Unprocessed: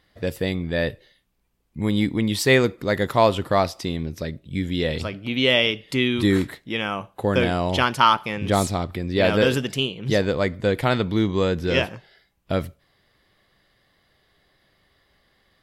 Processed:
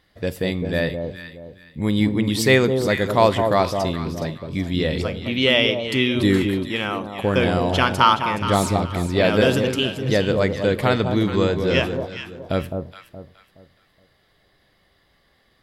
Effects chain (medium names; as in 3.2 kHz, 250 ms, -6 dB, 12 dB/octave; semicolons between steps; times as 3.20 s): echo whose repeats swap between lows and highs 210 ms, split 1 kHz, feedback 53%, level -5 dB; Schroeder reverb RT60 0.54 s, combs from 30 ms, DRR 19.5 dB; trim +1 dB